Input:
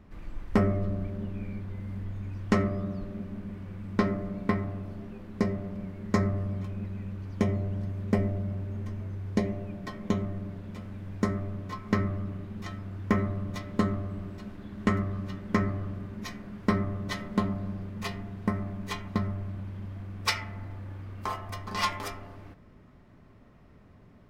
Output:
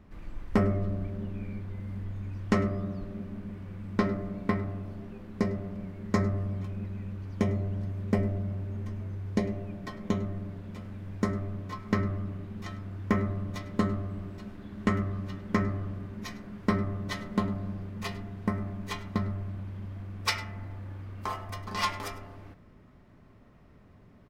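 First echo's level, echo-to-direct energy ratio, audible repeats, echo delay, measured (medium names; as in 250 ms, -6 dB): -19.0 dB, -19.0 dB, 1, 102 ms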